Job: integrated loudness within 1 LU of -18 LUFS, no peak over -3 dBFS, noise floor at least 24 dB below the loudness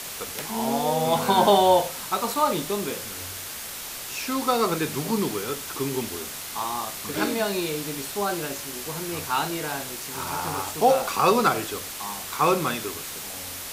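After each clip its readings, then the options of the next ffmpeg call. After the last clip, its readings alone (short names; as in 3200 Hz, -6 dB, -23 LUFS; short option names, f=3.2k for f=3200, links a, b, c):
noise floor -36 dBFS; noise floor target -50 dBFS; loudness -25.5 LUFS; peak -6.5 dBFS; loudness target -18.0 LUFS
-> -af "afftdn=nr=14:nf=-36"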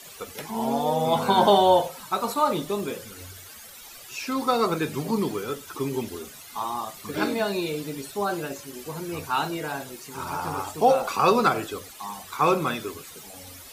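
noise floor -45 dBFS; noise floor target -50 dBFS
-> -af "afftdn=nr=6:nf=-45"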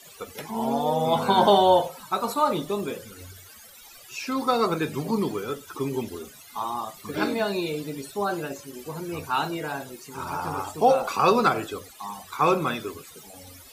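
noise floor -48 dBFS; noise floor target -50 dBFS
-> -af "afftdn=nr=6:nf=-48"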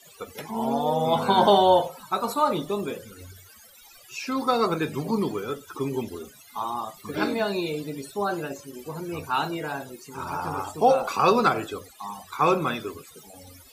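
noise floor -51 dBFS; loudness -25.5 LUFS; peak -7.5 dBFS; loudness target -18.0 LUFS
-> -af "volume=7.5dB,alimiter=limit=-3dB:level=0:latency=1"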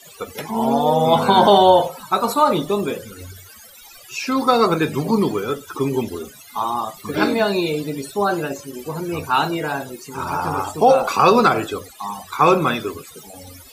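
loudness -18.5 LUFS; peak -3.0 dBFS; noise floor -44 dBFS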